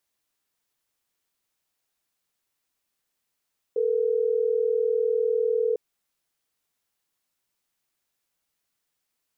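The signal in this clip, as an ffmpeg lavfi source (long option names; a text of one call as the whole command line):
ffmpeg -f lavfi -i "aevalsrc='0.0668*(sin(2*PI*440*t)+sin(2*PI*480*t))*clip(min(mod(t,6),2-mod(t,6))/0.005,0,1)':duration=3.12:sample_rate=44100" out.wav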